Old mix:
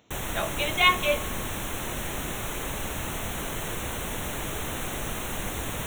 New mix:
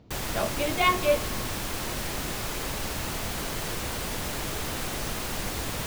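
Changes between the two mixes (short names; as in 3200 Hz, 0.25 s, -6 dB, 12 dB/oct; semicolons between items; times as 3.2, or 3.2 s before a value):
speech: add tilt -4.5 dB/oct; master: remove Butterworth band-stop 4800 Hz, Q 2.3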